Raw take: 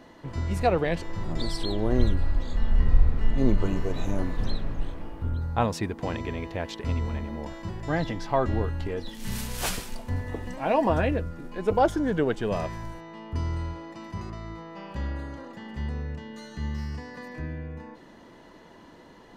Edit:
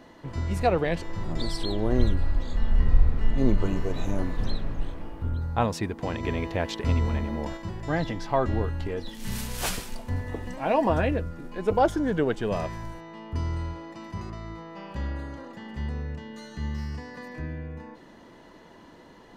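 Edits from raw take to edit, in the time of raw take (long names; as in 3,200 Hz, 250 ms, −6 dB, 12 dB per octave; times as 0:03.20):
0:06.23–0:07.57: clip gain +4 dB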